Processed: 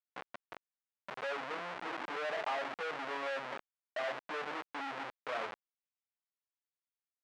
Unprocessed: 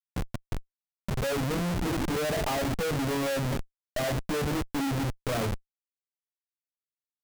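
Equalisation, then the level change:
band-pass filter 790–2,400 Hz
−2.0 dB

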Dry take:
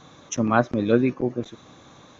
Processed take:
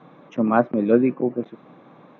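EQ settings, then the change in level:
Chebyshev band-pass filter 160–2,400 Hz, order 3
parametric band 2,000 Hz −6.5 dB 1.5 octaves
+3.5 dB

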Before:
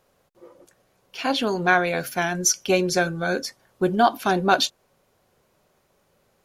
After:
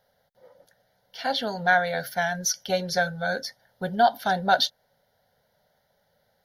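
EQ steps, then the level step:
low-shelf EQ 82 Hz −9.5 dB
phaser with its sweep stopped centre 1,700 Hz, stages 8
0.0 dB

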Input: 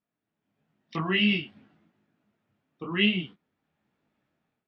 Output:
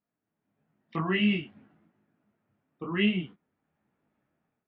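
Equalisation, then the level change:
low-pass filter 2,100 Hz 12 dB per octave
0.0 dB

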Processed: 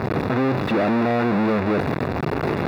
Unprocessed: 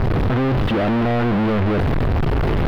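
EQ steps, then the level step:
high-pass filter 170 Hz 12 dB per octave
Butterworth band-reject 3,100 Hz, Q 6.5
0.0 dB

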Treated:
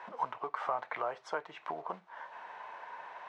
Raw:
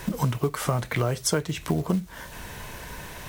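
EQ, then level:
four-pole ladder band-pass 1,000 Hz, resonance 45%
high-frequency loss of the air 52 metres
+6.5 dB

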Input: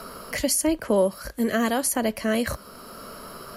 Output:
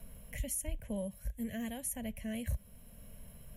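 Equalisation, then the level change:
guitar amp tone stack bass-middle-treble 10-0-1
phaser with its sweep stopped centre 1,300 Hz, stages 6
+9.5 dB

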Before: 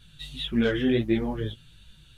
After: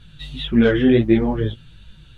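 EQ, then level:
low-pass filter 2,000 Hz 6 dB per octave
+9.0 dB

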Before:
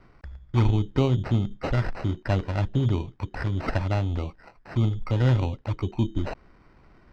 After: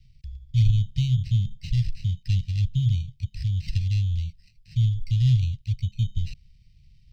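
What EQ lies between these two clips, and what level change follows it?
inverse Chebyshev band-stop filter 310–1,400 Hz, stop band 50 dB
+3.0 dB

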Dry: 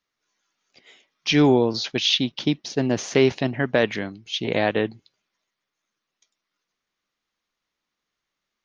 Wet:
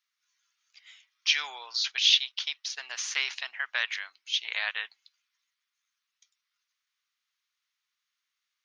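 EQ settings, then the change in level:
high-pass filter 1,300 Hz 24 dB per octave
parametric band 1,700 Hz −2.5 dB 0.77 octaves
0.0 dB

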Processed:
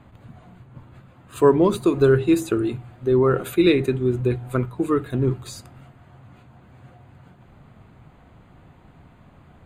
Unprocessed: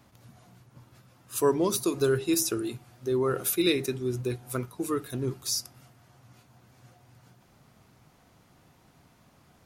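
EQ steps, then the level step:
moving average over 8 samples
low-shelf EQ 90 Hz +11.5 dB
mains-hum notches 60/120 Hz
+8.0 dB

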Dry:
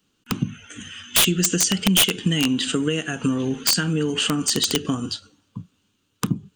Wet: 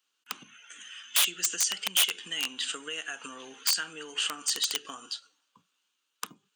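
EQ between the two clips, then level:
high-pass filter 890 Hz 12 dB per octave
−6.5 dB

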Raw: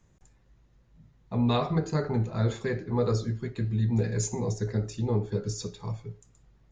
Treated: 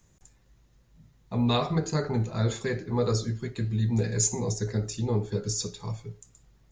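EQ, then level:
high-shelf EQ 4,300 Hz +11.5 dB
0.0 dB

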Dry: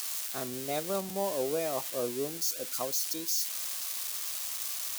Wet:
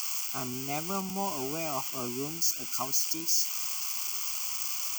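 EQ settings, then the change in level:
phaser with its sweep stopped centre 2,600 Hz, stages 8
+5.5 dB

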